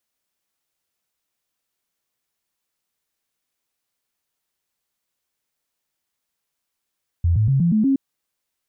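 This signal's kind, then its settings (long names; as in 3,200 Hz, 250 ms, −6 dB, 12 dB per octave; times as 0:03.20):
stepped sweep 85.4 Hz up, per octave 3, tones 6, 0.12 s, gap 0.00 s −14 dBFS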